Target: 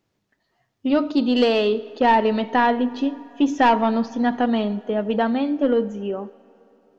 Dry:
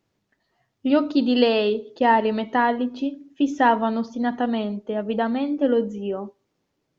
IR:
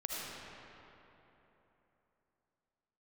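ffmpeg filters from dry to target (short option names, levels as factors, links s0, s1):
-filter_complex "[0:a]dynaudnorm=f=260:g=13:m=2,asoftclip=type=tanh:threshold=0.376,asplit=2[s0][s1];[1:a]atrim=start_sample=2205,lowshelf=f=360:g=-11[s2];[s1][s2]afir=irnorm=-1:irlink=0,volume=0.1[s3];[s0][s3]amix=inputs=2:normalize=0"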